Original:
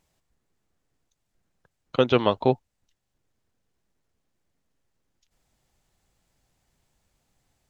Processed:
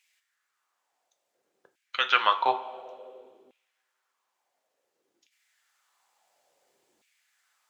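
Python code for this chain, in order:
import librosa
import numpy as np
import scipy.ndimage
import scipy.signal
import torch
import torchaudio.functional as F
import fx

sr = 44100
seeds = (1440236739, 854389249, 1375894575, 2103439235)

y = fx.rev_double_slope(x, sr, seeds[0], early_s=0.31, late_s=2.1, knee_db=-18, drr_db=7.0)
y = fx.filter_lfo_highpass(y, sr, shape='saw_down', hz=0.57, low_hz=310.0, high_hz=2400.0, q=3.0)
y = F.gain(torch.from_numpy(y), 1.0).numpy()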